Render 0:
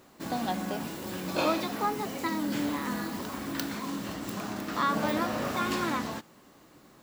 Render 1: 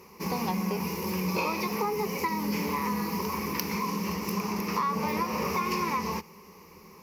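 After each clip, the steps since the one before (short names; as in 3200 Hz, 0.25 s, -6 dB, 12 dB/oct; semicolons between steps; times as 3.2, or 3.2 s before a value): ripple EQ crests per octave 0.82, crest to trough 17 dB; compressor, threshold -28 dBFS, peak gain reduction 9 dB; gain +2.5 dB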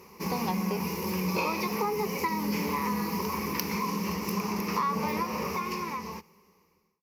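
ending faded out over 2.08 s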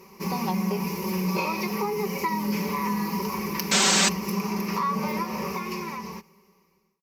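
painted sound noise, 3.71–4.09, 220–8300 Hz -22 dBFS; comb 5.2 ms, depth 59%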